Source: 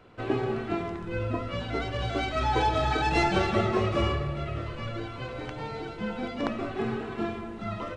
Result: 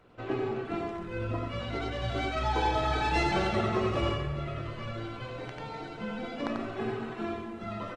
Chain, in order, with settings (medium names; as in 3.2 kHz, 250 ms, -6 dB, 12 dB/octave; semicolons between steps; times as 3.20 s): hum notches 50/100/150/200/250/300/350/400/450 Hz; delay 91 ms -4 dB; trim -4 dB; Opus 24 kbps 48 kHz